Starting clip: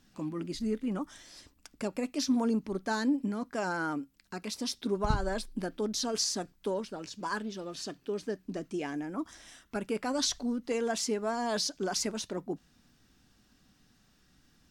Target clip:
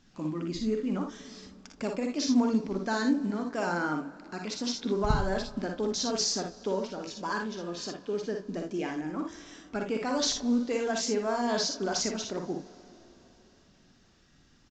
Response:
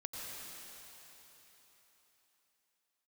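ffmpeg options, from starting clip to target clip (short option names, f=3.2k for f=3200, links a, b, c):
-filter_complex "[0:a]aecho=1:1:46|58|79:0.376|0.531|0.237,asplit=2[a][b];[1:a]atrim=start_sample=2205,highshelf=f=4k:g=-9.5[c];[b][c]afir=irnorm=-1:irlink=0,volume=-13.5dB[d];[a][d]amix=inputs=2:normalize=0" -ar 16000 -c:a pcm_mulaw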